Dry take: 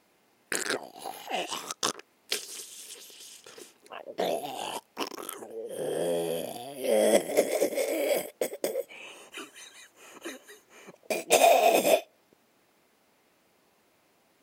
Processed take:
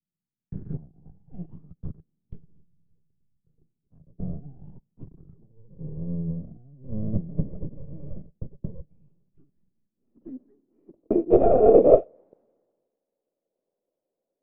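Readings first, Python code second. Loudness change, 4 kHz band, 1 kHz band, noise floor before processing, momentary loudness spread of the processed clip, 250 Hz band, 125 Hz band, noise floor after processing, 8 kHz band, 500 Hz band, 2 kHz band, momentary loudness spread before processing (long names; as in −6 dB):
+6.0 dB, below −35 dB, −3.5 dB, −67 dBFS, 25 LU, +7.0 dB, +17.0 dB, below −85 dBFS, below −40 dB, +3.5 dB, below −25 dB, 22 LU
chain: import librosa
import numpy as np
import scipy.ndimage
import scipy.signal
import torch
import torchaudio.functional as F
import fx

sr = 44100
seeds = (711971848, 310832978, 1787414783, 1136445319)

p1 = np.where(x < 0.0, 10.0 ** (-12.0 / 20.0) * x, x)
p2 = fx.lowpass(p1, sr, hz=2600.0, slope=6)
p3 = fx.rider(p2, sr, range_db=3, speed_s=0.5)
p4 = p2 + (p3 * librosa.db_to_amplitude(1.0))
p5 = fx.filter_sweep_lowpass(p4, sr, from_hz=160.0, to_hz=530.0, start_s=9.31, end_s=12.21, q=4.4)
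p6 = fx.band_widen(p5, sr, depth_pct=70)
y = p6 * librosa.db_to_amplitude(-3.5)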